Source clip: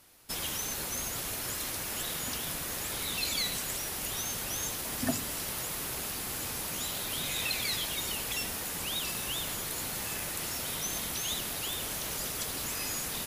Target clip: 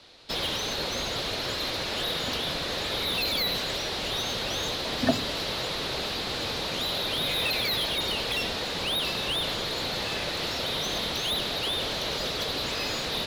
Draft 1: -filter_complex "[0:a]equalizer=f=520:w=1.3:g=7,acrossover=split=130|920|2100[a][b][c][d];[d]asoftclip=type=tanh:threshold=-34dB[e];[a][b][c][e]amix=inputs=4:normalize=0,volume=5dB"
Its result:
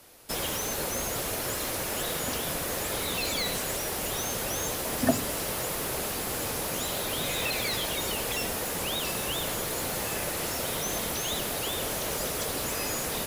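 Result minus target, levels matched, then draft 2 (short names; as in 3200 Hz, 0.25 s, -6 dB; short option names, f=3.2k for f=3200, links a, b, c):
4000 Hz band -5.5 dB
-filter_complex "[0:a]lowpass=f=4k:t=q:w=3.9,equalizer=f=520:w=1.3:g=7,acrossover=split=130|920|2100[a][b][c][d];[d]asoftclip=type=tanh:threshold=-34dB[e];[a][b][c][e]amix=inputs=4:normalize=0,volume=5dB"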